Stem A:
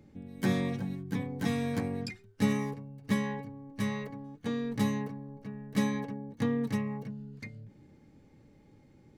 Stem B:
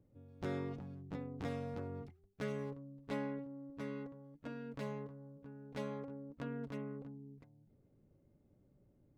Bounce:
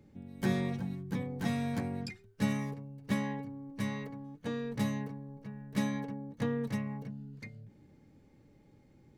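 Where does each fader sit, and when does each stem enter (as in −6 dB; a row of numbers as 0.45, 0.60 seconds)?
−3.0, −1.5 decibels; 0.00, 0.00 seconds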